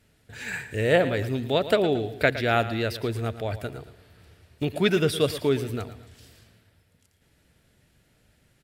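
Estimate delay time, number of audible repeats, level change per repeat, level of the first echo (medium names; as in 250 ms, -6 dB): 113 ms, 2, -7.5 dB, -13.5 dB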